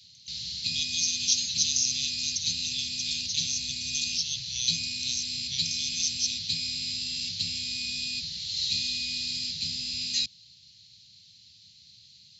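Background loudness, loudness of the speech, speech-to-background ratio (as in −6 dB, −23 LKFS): −29.5 LKFS, −29.5 LKFS, 0.0 dB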